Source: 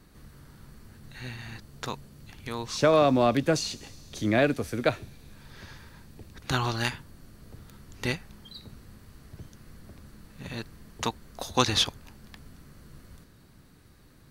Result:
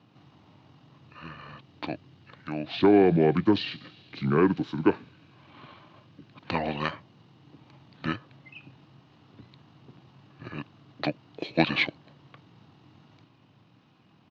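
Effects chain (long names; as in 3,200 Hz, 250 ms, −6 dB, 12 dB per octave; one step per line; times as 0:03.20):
pitch shifter −7.5 semitones
elliptic band-pass filter 120–4,300 Hz, stop band 40 dB
parametric band 300 Hz +7 dB 0.44 octaves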